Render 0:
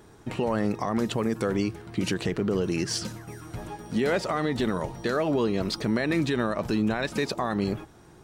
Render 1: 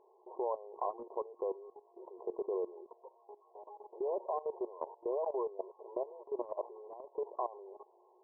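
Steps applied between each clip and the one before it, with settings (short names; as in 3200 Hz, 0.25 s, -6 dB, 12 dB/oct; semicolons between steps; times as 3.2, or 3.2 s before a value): FFT band-pass 350–1100 Hz; tilt +2 dB/oct; level quantiser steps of 16 dB; gain -2 dB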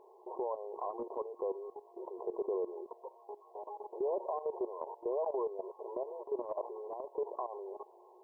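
limiter -34 dBFS, peak gain reduction 11 dB; gain +6.5 dB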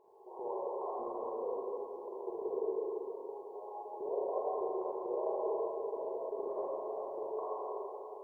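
reverb RT60 3.2 s, pre-delay 37 ms, DRR -7.5 dB; gain -7 dB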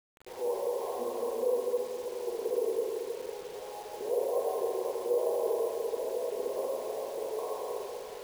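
careless resampling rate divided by 4×, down filtered, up hold; small resonant body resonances 240/490 Hz, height 13 dB, ringing for 65 ms; requantised 8-bit, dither none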